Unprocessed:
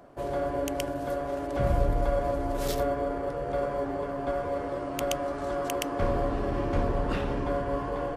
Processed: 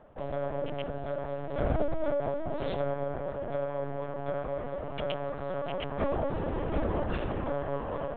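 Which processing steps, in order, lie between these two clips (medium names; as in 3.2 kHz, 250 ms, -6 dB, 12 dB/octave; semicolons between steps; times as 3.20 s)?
LPC vocoder at 8 kHz pitch kept; trim -3 dB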